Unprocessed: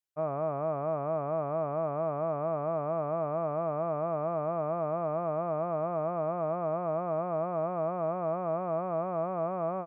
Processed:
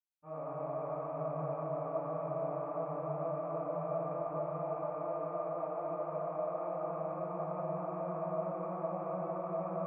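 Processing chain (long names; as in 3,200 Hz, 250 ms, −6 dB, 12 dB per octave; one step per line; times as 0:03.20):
0:04.15–0:06.84: high-pass filter 250 Hz 12 dB per octave
convolution reverb RT60 3.4 s, pre-delay 59 ms, DRR −60 dB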